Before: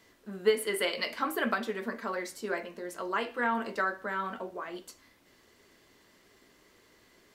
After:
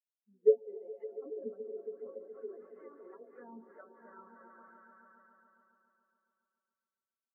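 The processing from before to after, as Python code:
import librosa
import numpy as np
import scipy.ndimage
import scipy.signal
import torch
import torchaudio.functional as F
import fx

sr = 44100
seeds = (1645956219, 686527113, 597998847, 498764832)

y = fx.high_shelf(x, sr, hz=9400.0, db=11.0)
y = fx.echo_swell(y, sr, ms=140, loudest=5, wet_db=-9.0)
y = fx.echo_pitch(y, sr, ms=114, semitones=4, count=3, db_per_echo=-6.0)
y = fx.env_lowpass_down(y, sr, base_hz=720.0, full_db=-23.0)
y = fx.high_shelf(y, sr, hz=3500.0, db=7.0)
y = fx.spectral_expand(y, sr, expansion=2.5)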